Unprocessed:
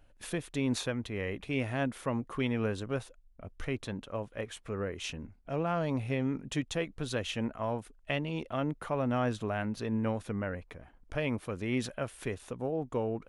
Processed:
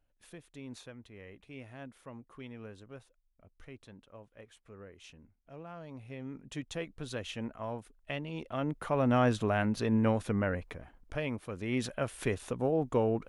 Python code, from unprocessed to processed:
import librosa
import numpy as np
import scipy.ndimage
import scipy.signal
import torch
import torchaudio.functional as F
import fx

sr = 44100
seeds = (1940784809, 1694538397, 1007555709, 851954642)

y = fx.gain(x, sr, db=fx.line((5.91, -15.0), (6.75, -5.0), (8.28, -5.0), (9.12, 4.0), (10.68, 4.0), (11.39, -4.5), (12.22, 4.0)))